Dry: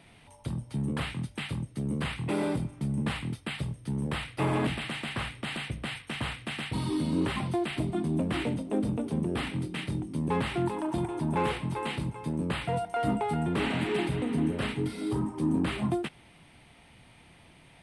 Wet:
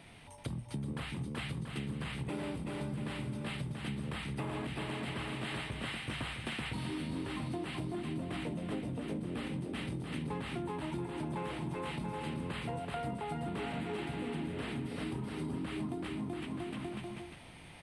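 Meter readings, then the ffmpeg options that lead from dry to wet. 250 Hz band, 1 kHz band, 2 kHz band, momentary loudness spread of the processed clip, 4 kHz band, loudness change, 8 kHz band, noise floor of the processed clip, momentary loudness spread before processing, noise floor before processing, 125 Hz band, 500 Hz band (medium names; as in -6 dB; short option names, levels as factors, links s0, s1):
-8.0 dB, -8.0 dB, -6.5 dB, 2 LU, -6.0 dB, -8.0 dB, -6.0 dB, -52 dBFS, 6 LU, -56 dBFS, -7.0 dB, -8.0 dB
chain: -filter_complex "[0:a]asplit=2[s0][s1];[s1]aecho=0:1:380|684|927.2|1122|1277:0.631|0.398|0.251|0.158|0.1[s2];[s0][s2]amix=inputs=2:normalize=0,acompressor=threshold=0.0141:ratio=6,volume=1.12"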